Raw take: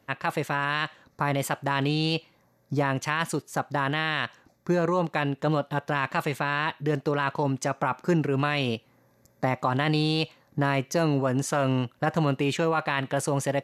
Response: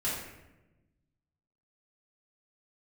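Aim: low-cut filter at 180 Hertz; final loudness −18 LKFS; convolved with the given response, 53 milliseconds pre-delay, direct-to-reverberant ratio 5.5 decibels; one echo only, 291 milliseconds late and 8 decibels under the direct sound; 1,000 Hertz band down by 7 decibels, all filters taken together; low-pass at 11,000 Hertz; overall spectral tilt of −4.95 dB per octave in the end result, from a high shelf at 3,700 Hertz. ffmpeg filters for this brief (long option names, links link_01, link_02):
-filter_complex "[0:a]highpass=180,lowpass=11000,equalizer=frequency=1000:width_type=o:gain=-8.5,highshelf=frequency=3700:gain=-8.5,aecho=1:1:291:0.398,asplit=2[link_01][link_02];[1:a]atrim=start_sample=2205,adelay=53[link_03];[link_02][link_03]afir=irnorm=-1:irlink=0,volume=-12dB[link_04];[link_01][link_04]amix=inputs=2:normalize=0,volume=10.5dB"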